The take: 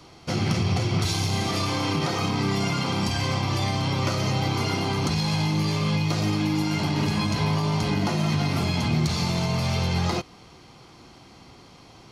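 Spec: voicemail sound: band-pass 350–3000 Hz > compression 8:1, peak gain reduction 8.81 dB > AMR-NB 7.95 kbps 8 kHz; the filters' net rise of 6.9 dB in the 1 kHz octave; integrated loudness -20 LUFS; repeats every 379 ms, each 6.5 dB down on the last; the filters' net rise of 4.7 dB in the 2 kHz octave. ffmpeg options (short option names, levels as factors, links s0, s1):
-af "highpass=350,lowpass=3000,equalizer=f=1000:t=o:g=7.5,equalizer=f=2000:t=o:g=5,aecho=1:1:379|758|1137|1516|1895|2274:0.473|0.222|0.105|0.0491|0.0231|0.0109,acompressor=threshold=0.0447:ratio=8,volume=4.22" -ar 8000 -c:a libopencore_amrnb -b:a 7950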